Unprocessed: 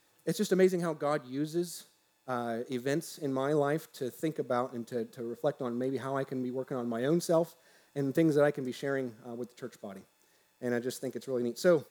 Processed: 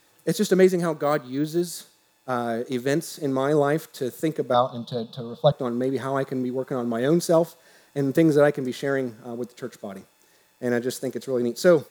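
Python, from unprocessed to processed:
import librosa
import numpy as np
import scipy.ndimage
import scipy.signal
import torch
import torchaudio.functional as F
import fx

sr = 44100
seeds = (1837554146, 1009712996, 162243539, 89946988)

y = fx.resample_bad(x, sr, factor=2, down='none', up='hold', at=(0.92, 1.61))
y = fx.curve_eq(y, sr, hz=(110.0, 150.0, 350.0, 620.0, 1200.0, 2000.0, 3600.0, 6700.0), db=(0, 11, -14, 6, 4, -18, 14, -10), at=(4.54, 5.52))
y = y * 10.0 ** (8.0 / 20.0)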